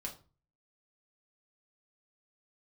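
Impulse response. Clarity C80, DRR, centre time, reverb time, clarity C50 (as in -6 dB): 17.5 dB, -1.0 dB, 14 ms, 0.35 s, 12.0 dB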